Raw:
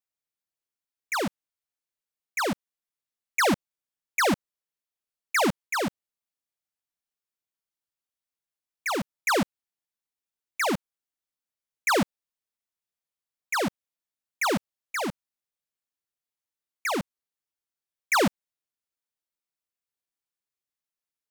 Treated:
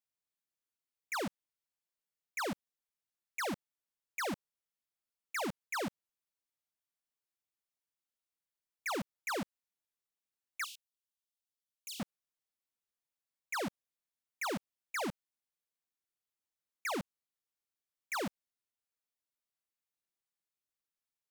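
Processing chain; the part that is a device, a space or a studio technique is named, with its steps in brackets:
soft clipper into limiter (soft clipping −25 dBFS, distortion −16 dB; brickwall limiter −31 dBFS, peak gain reduction 5.5 dB)
0:10.64–0:12.00: Butterworth high-pass 2,700 Hz 72 dB per octave
level −4 dB

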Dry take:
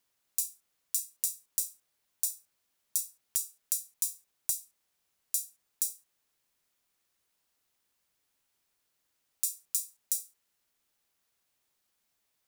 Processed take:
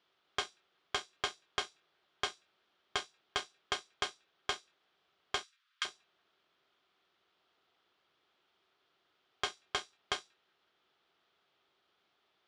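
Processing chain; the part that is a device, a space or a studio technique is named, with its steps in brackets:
analogue delay pedal into a guitar amplifier (bucket-brigade delay 185 ms, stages 2,048, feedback 79%, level −9 dB; tube saturation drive 20 dB, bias 0.75; loudspeaker in its box 91–4,200 Hz, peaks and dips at 110 Hz −7 dB, 240 Hz −4 dB, 380 Hz +9 dB, 710 Hz +5 dB, 1,300 Hz +7 dB, 3,300 Hz +6 dB)
0:05.43–0:05.85: Butterworth high-pass 1,200 Hz 36 dB per octave
level +9.5 dB

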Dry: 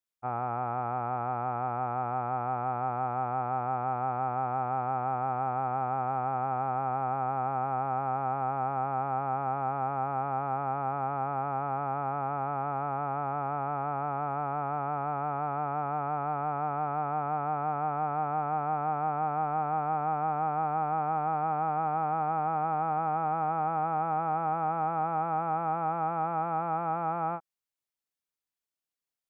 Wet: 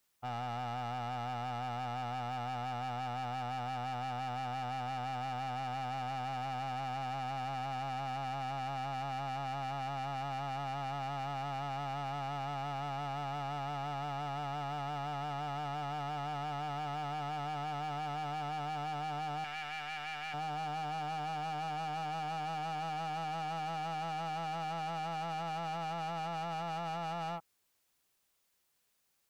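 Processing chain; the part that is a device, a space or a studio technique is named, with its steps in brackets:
open-reel tape (soft clipping −36.5 dBFS, distortion −7 dB; parametric band 130 Hz +3 dB 1.04 octaves; white noise bed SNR 39 dB)
0:19.44–0:20.34: graphic EQ with 10 bands 125 Hz −9 dB, 250 Hz −12 dB, 500 Hz −6 dB, 1,000 Hz −6 dB, 2,000 Hz +11 dB

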